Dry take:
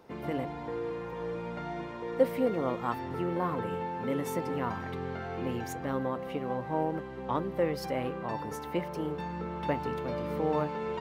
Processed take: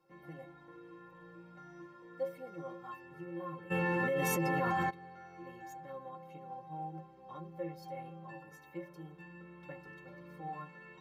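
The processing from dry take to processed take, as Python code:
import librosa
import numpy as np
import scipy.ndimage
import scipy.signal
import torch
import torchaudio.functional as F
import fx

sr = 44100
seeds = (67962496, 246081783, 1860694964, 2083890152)

y = fx.stiff_resonator(x, sr, f0_hz=160.0, decay_s=0.34, stiffness=0.03)
y = fx.env_flatten(y, sr, amount_pct=100, at=(3.7, 4.89), fade=0.02)
y = y * 10.0 ** (-3.0 / 20.0)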